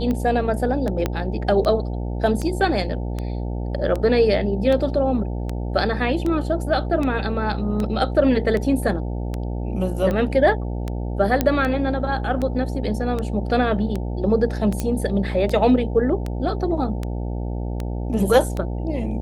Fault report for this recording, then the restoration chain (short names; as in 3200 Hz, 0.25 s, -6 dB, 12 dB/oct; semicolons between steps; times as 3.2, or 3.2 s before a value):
buzz 60 Hz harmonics 15 -26 dBFS
tick 78 rpm -14 dBFS
1.06 pop -8 dBFS
11.41 pop -5 dBFS
14.8 pop -10 dBFS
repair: de-click; de-hum 60 Hz, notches 15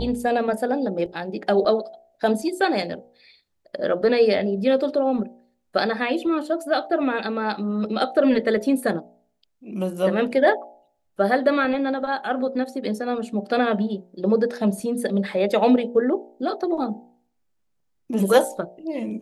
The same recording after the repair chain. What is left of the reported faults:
1.06 pop